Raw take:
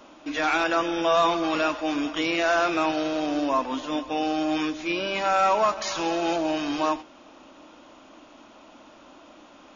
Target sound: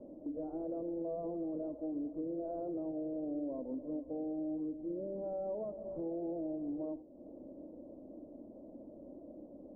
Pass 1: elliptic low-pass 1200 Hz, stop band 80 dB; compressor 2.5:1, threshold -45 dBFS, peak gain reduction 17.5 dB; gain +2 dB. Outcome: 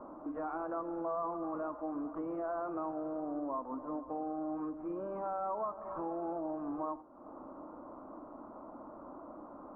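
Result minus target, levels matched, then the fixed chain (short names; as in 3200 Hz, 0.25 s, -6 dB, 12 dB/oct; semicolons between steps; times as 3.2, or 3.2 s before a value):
1000 Hz band +13.5 dB
elliptic low-pass 570 Hz, stop band 80 dB; compressor 2.5:1, threshold -45 dBFS, peak gain reduction 14 dB; gain +2 dB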